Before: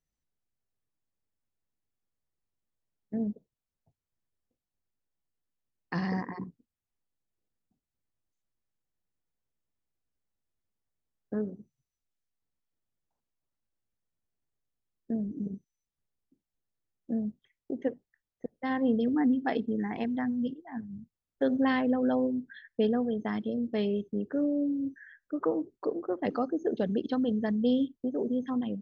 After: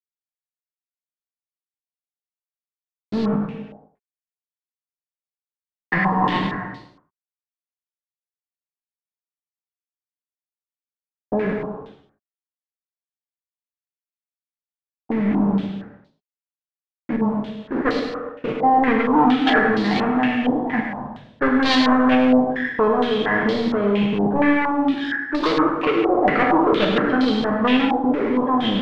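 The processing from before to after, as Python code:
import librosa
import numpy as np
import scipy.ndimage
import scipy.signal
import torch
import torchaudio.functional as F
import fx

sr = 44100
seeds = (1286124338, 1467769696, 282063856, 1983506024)

p1 = fx.spec_trails(x, sr, decay_s=0.45)
p2 = p1 + 0.42 * np.pad(p1, (int(6.6 * sr / 1000.0), 0))[:len(p1)]
p3 = fx.level_steps(p2, sr, step_db=13)
p4 = fx.leveller(p3, sr, passes=5)
p5 = fx.quant_dither(p4, sr, seeds[0], bits=8, dither='none')
p6 = fx.dispersion(p5, sr, late='highs', ms=82.0, hz=620.0, at=(17.16, 17.71))
p7 = p6 + fx.echo_single(p6, sr, ms=102, db=-9.5, dry=0)
p8 = fx.rev_gated(p7, sr, seeds[1], gate_ms=450, shape='falling', drr_db=1.5)
y = fx.filter_held_lowpass(p8, sr, hz=4.3, low_hz=780.0, high_hz=4300.0)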